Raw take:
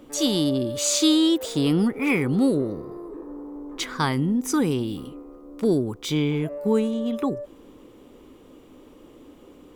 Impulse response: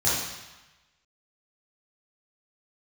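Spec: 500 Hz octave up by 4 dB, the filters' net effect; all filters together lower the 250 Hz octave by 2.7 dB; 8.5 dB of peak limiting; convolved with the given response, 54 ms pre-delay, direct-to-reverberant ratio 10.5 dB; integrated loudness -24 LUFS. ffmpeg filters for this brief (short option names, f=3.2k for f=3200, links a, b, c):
-filter_complex "[0:a]equalizer=f=250:t=o:g=-6,equalizer=f=500:t=o:g=7,alimiter=limit=-16.5dB:level=0:latency=1,asplit=2[a][b];[1:a]atrim=start_sample=2205,adelay=54[c];[b][c]afir=irnorm=-1:irlink=0,volume=-24dB[d];[a][d]amix=inputs=2:normalize=0,volume=2dB"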